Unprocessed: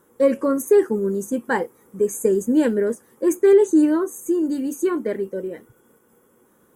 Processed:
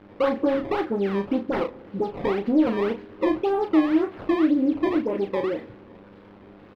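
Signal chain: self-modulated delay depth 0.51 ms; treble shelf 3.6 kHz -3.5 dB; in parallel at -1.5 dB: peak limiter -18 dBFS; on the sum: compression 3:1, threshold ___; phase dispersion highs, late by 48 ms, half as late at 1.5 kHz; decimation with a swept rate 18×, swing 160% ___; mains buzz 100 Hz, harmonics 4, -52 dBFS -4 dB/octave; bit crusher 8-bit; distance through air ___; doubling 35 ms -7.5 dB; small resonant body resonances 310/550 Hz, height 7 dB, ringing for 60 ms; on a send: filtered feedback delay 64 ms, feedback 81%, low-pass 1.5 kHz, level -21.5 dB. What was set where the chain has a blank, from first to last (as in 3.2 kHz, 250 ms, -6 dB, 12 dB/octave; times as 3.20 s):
-24 dBFS, 1.9 Hz, 380 m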